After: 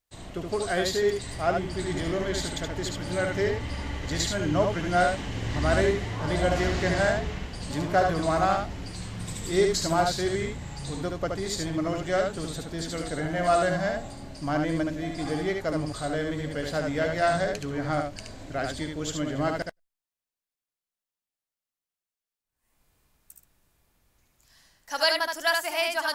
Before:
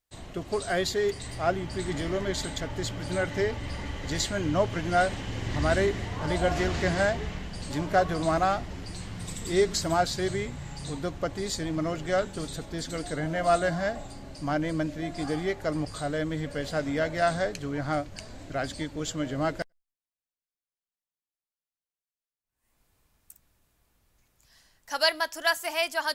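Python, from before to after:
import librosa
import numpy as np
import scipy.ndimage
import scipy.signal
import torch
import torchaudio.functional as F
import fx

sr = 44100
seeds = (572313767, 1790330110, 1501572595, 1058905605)

y = x + 10.0 ** (-4.0 / 20.0) * np.pad(x, (int(73 * sr / 1000.0), 0))[:len(x)]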